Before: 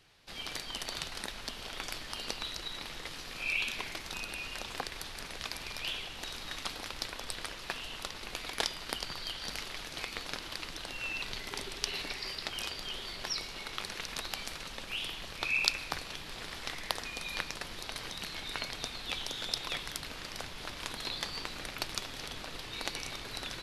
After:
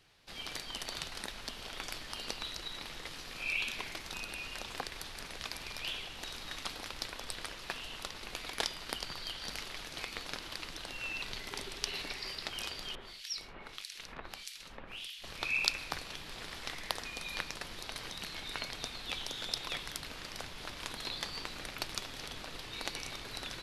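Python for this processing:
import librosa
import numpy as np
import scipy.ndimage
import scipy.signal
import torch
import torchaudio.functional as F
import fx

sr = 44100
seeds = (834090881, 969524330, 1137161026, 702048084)

y = fx.harmonic_tremolo(x, sr, hz=1.6, depth_pct=100, crossover_hz=2200.0, at=(12.95, 15.24))
y = y * librosa.db_to_amplitude(-2.0)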